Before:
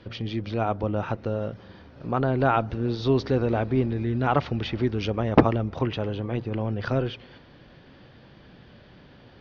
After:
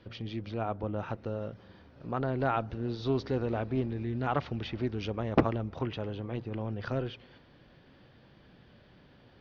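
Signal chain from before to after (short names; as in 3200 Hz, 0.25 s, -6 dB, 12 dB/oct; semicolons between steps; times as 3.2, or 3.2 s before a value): 0.52–0.99 LPF 3300 Hz 6 dB/oct; Doppler distortion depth 0.37 ms; gain -7.5 dB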